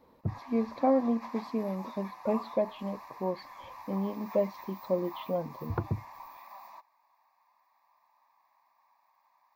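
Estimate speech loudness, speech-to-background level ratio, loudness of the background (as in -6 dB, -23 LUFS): -33.0 LUFS, 13.5 dB, -46.5 LUFS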